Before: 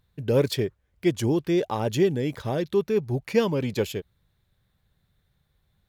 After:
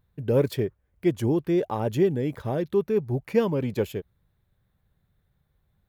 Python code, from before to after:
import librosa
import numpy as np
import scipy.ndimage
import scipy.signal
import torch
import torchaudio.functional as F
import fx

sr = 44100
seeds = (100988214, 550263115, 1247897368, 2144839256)

y = fx.peak_eq(x, sr, hz=5100.0, db=-10.0, octaves=2.2)